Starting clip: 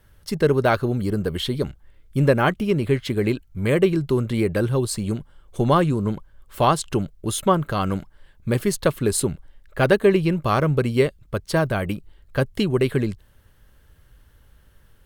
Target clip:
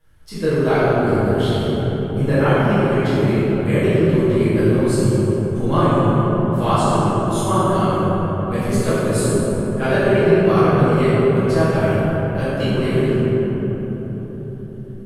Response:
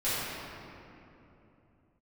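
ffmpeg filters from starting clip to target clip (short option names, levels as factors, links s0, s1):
-filter_complex "[1:a]atrim=start_sample=2205,asetrate=26019,aresample=44100[s0];[0:a][s0]afir=irnorm=-1:irlink=0,volume=0.282"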